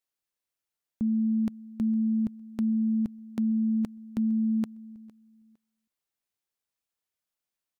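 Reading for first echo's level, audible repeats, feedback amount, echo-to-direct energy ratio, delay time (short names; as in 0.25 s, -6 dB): -22.0 dB, 2, 25%, -21.5 dB, 0.458 s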